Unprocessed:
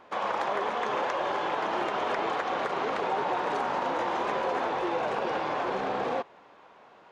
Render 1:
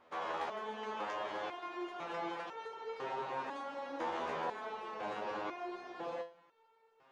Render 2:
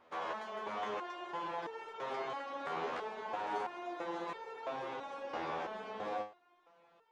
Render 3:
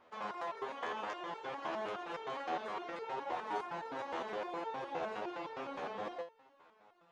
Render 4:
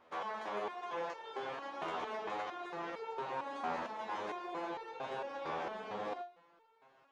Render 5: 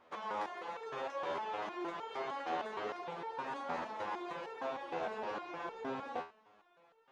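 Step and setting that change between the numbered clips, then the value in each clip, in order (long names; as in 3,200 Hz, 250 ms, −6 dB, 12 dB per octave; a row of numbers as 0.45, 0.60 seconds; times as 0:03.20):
step-sequenced resonator, speed: 2, 3, 9.7, 4.4, 6.5 Hertz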